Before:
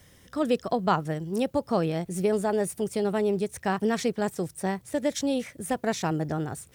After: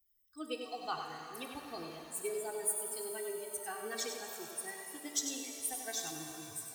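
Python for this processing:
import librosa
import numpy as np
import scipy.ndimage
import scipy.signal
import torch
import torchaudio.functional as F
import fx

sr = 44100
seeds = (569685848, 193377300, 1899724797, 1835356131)

y = fx.bin_expand(x, sr, power=2.0)
y = F.preemphasis(torch.from_numpy(y), 0.9).numpy()
y = y + 0.83 * np.pad(y, (int(2.6 * sr / 1000.0), 0))[:len(y)]
y = y + 10.0 ** (-7.5 / 20.0) * np.pad(y, (int(96 * sr / 1000.0), 0))[:len(y)]
y = fx.rev_shimmer(y, sr, seeds[0], rt60_s=3.5, semitones=7, shimmer_db=-8, drr_db=4.0)
y = y * librosa.db_to_amplitude(1.5)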